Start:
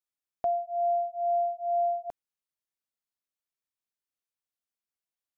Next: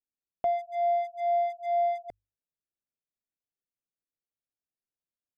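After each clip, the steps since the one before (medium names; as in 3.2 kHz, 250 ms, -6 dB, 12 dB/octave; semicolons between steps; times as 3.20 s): local Wiener filter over 41 samples; hum notches 50/100 Hz; trim +2 dB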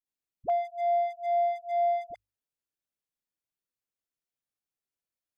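phase dispersion highs, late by 59 ms, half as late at 440 Hz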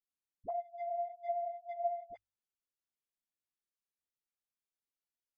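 low-pass that closes with the level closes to 770 Hz, closed at -26 dBFS; three-phase chorus; trim -4.5 dB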